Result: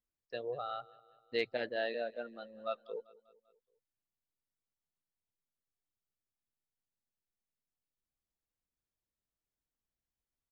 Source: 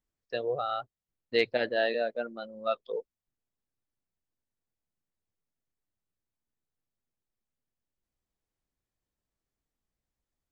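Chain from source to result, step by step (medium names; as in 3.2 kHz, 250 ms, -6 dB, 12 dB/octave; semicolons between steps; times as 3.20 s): feedback delay 196 ms, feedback 53%, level -21.5 dB; trim -8 dB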